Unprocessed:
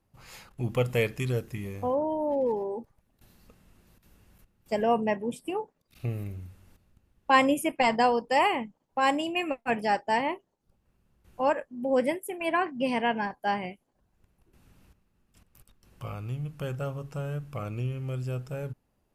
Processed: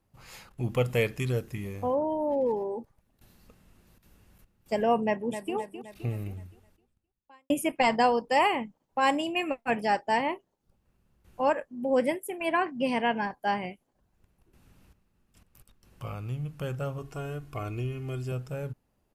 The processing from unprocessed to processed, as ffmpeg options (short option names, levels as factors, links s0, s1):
-filter_complex "[0:a]asplit=2[s0][s1];[s1]afade=t=in:st=5.04:d=0.01,afade=t=out:st=5.55:d=0.01,aecho=0:1:260|520|780|1040|1300|1560:0.316228|0.173925|0.0956589|0.0526124|0.0289368|0.0159152[s2];[s0][s2]amix=inputs=2:normalize=0,asettb=1/sr,asplit=3[s3][s4][s5];[s3]atrim=end=16.984[s6];[s4]atrim=start=16.98:end=18.32,asetpts=PTS-STARTPTS,afade=t=in:d=0.004:c=qsin,afade=t=out:st=1.336:d=0.004:c=qsin,aecho=1:1:2.8:0.66,atrim=end_sample=59094[s7];[s5]atrim=start=18.316[s8];[s6][s7]acrossfade=d=0.004:c1=hsin:c2=qsin[s9];[s9][s8]acrossfade=d=0.004:c1=qsin:c2=hsin,asplit=2[s10][s11];[s10]atrim=end=7.5,asetpts=PTS-STARTPTS,afade=t=out:st=6.31:d=1.19:c=qua[s12];[s11]atrim=start=7.5,asetpts=PTS-STARTPTS,afade=t=in:d=0.004:c=hsin[s13];[s12][s13]concat=n=2:v=0:a=1"